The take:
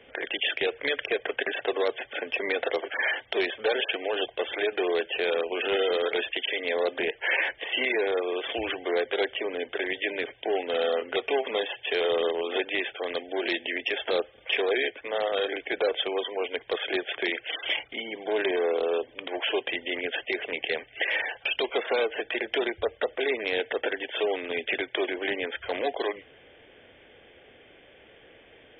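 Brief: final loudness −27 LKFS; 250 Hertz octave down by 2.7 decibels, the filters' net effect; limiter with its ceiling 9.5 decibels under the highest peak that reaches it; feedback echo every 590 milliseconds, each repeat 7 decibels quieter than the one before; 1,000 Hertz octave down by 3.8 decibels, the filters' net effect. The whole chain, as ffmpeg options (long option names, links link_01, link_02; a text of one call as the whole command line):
ffmpeg -i in.wav -af "equalizer=frequency=250:width_type=o:gain=-4,equalizer=frequency=1000:width_type=o:gain=-5.5,alimiter=limit=-23.5dB:level=0:latency=1,aecho=1:1:590|1180|1770|2360|2950:0.447|0.201|0.0905|0.0407|0.0183,volume=5.5dB" out.wav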